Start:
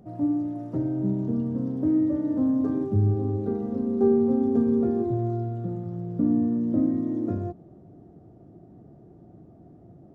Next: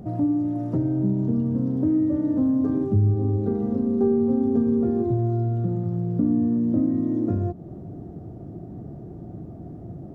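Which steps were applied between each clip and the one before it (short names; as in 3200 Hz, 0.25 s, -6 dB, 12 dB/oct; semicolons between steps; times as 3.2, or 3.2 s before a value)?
low shelf 200 Hz +7 dB; compressor 2:1, threshold -35 dBFS, peak gain reduction 12 dB; gain +8.5 dB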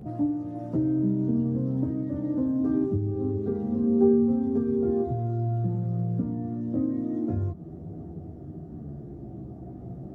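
chorus voices 2, 0.25 Hz, delay 14 ms, depth 1.9 ms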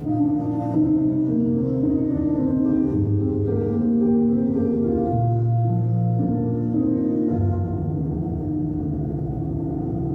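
FDN reverb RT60 1.6 s, low-frequency decay 0.9×, high-frequency decay 0.6×, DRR -9.5 dB; fast leveller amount 50%; gain -5.5 dB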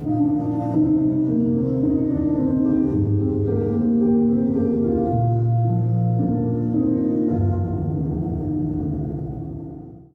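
ending faded out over 1.30 s; gain +1 dB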